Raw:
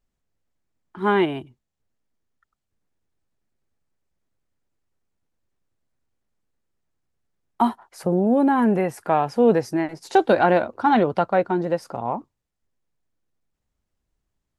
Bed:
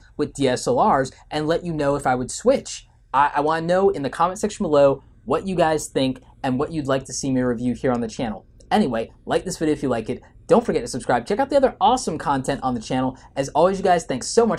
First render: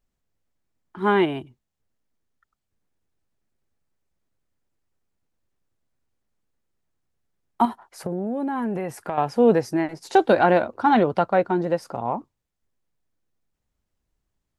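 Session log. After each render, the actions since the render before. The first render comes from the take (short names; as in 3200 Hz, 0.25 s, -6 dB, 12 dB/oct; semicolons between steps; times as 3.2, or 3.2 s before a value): 7.65–9.18 compressor, threshold -23 dBFS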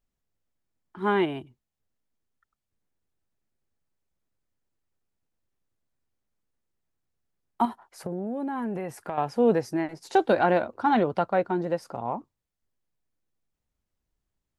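gain -4.5 dB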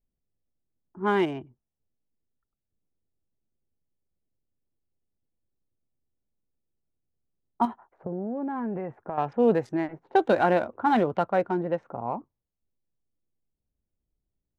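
Wiener smoothing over 9 samples; low-pass opened by the level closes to 540 Hz, open at -19.5 dBFS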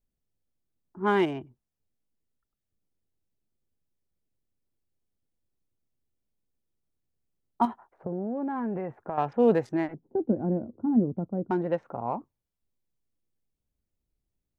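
9.94–11.51 synth low-pass 250 Hz, resonance Q 1.6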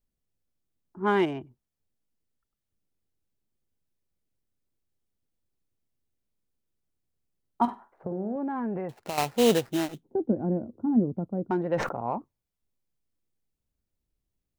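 7.63–8.36 flutter echo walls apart 8.4 m, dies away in 0.25 s; 8.89–10.03 sample-rate reducer 3400 Hz, jitter 20%; 11.69–12.18 sustainer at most 69 dB/s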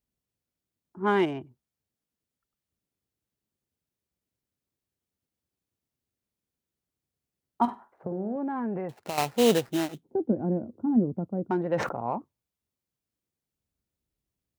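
HPF 63 Hz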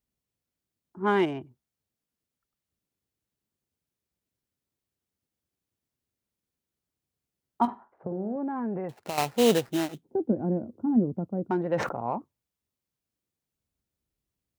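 7.67–8.84 LPF 1700 Hz 6 dB/oct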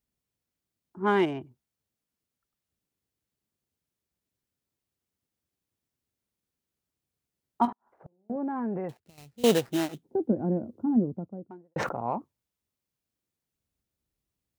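7.72–8.3 flipped gate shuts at -34 dBFS, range -38 dB; 8.97–9.44 passive tone stack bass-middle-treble 10-0-1; 10.77–11.76 studio fade out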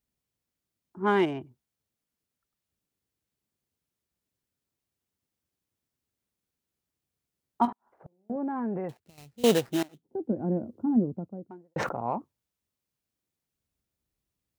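9.83–10.57 fade in, from -20.5 dB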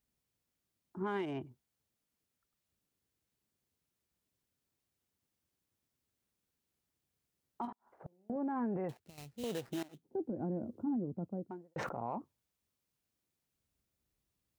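compressor 4:1, threshold -31 dBFS, peak gain reduction 13 dB; limiter -29.5 dBFS, peak gain reduction 11 dB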